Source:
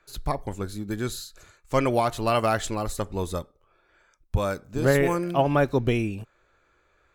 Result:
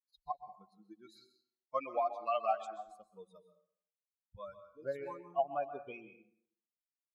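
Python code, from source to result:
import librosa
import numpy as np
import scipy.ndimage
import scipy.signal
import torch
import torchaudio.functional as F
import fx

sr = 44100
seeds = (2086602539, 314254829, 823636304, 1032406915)

y = fx.bin_expand(x, sr, power=3.0)
y = fx.rider(y, sr, range_db=5, speed_s=2.0)
y = fx.vowel_filter(y, sr, vowel='a')
y = fx.rev_plate(y, sr, seeds[0], rt60_s=0.64, hf_ratio=0.7, predelay_ms=115, drr_db=10.0)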